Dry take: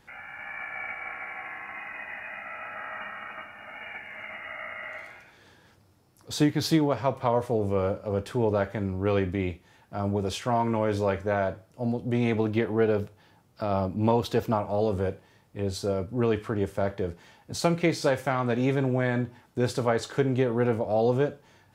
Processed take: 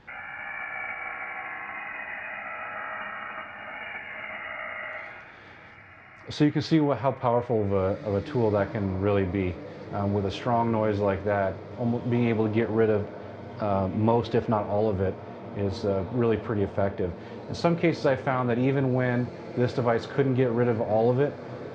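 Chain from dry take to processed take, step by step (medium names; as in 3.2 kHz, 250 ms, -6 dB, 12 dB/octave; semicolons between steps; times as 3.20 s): in parallel at 0 dB: compression, threshold -41 dBFS, peak gain reduction 21.5 dB; on the sum: Gaussian low-pass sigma 1.9 samples; echo that smears into a reverb 1823 ms, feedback 71%, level -15.5 dB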